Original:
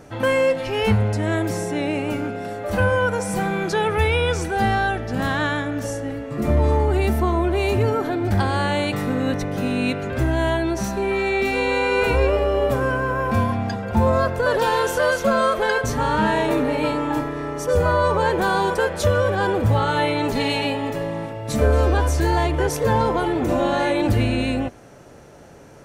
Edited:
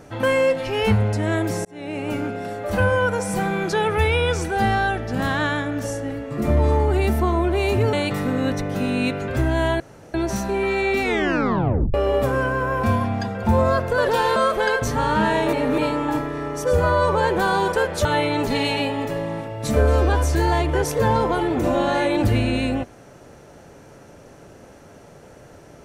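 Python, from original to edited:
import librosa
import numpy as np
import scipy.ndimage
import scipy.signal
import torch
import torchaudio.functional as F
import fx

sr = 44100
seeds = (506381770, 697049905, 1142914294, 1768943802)

y = fx.edit(x, sr, fx.fade_in_span(start_s=1.65, length_s=0.52),
    fx.cut(start_s=7.93, length_s=0.82),
    fx.insert_room_tone(at_s=10.62, length_s=0.34),
    fx.tape_stop(start_s=11.5, length_s=0.92),
    fx.cut(start_s=14.84, length_s=0.54),
    fx.reverse_span(start_s=16.55, length_s=0.25),
    fx.cut(start_s=19.07, length_s=0.83), tone=tone)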